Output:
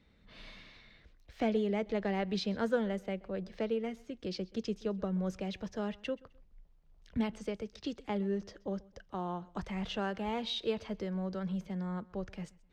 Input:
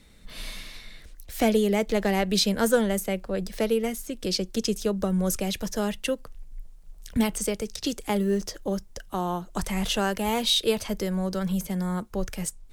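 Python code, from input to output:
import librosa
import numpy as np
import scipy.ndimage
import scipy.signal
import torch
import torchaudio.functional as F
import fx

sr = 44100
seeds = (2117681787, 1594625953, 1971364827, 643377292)

p1 = scipy.signal.sosfilt(scipy.signal.butter(2, 44.0, 'highpass', fs=sr, output='sos'), x)
p2 = fx.air_absorb(p1, sr, metres=210.0)
p3 = p2 + fx.echo_feedback(p2, sr, ms=129, feedback_pct=30, wet_db=-23.5, dry=0)
y = p3 * librosa.db_to_amplitude(-8.5)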